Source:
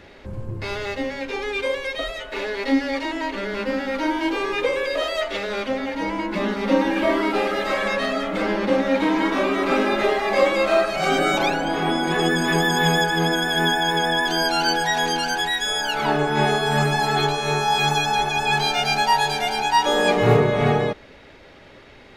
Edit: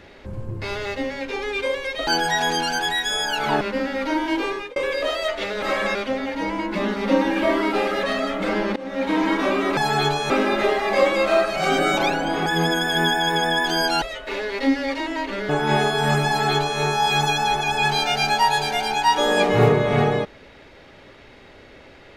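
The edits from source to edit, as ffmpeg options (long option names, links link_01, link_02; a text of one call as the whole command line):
ffmpeg -i in.wav -filter_complex "[0:a]asplit=13[link_01][link_02][link_03][link_04][link_05][link_06][link_07][link_08][link_09][link_10][link_11][link_12][link_13];[link_01]atrim=end=2.072[link_14];[link_02]atrim=start=14.628:end=16.172[link_15];[link_03]atrim=start=3.538:end=4.69,asetpts=PTS-STARTPTS,afade=type=out:start_time=0.852:duration=0.3[link_16];[link_04]atrim=start=4.69:end=5.552,asetpts=PTS-STARTPTS,afade=type=in:duration=0.004:curve=hsin[link_17];[link_05]atrim=start=7.628:end=7.962[link_18];[link_06]atrim=start=5.548:end=7.632[link_19];[link_07]atrim=start=7.958:end=8.69,asetpts=PTS-STARTPTS,afade=type=out:start_time=0.728:duration=0.004:curve=hsin:silence=0.0668344[link_20];[link_08]atrim=start=8.69:end=9.702,asetpts=PTS-STARTPTS,afade=type=in:duration=0.43:silence=0.0668344[link_21];[link_09]atrim=start=16.948:end=17.482[link_22];[link_10]atrim=start=9.698:end=11.862[link_23];[link_11]atrim=start=13.068:end=14.632[link_24];[link_12]atrim=start=2.068:end=3.542[link_25];[link_13]atrim=start=16.168[link_26];[link_14][link_15]acrossfade=duration=0.004:curve1=hsin:curve2=hsin[link_27];[link_16][link_17]concat=n=2:v=0:a=1[link_28];[link_27][link_28]acrossfade=duration=0.004:curve1=hsin:curve2=hsin[link_29];[link_29][link_18]acrossfade=duration=0.004:curve1=hsin:curve2=hsin[link_30];[link_30][link_19]acrossfade=duration=0.004:curve1=hsin:curve2=hsin[link_31];[link_20][link_21]concat=n=2:v=0:a=1[link_32];[link_31][link_32]acrossfade=duration=0.004:curve1=hsin:curve2=hsin[link_33];[link_33][link_22]acrossfade=duration=0.004:curve1=hsin:curve2=hsin[link_34];[link_34][link_23]acrossfade=duration=0.004:curve1=hsin:curve2=hsin[link_35];[link_35][link_24]acrossfade=duration=0.004:curve1=hsin:curve2=hsin[link_36];[link_36][link_25]acrossfade=duration=0.004:curve1=hsin:curve2=hsin[link_37];[link_37][link_26]acrossfade=duration=0.004:curve1=hsin:curve2=hsin" out.wav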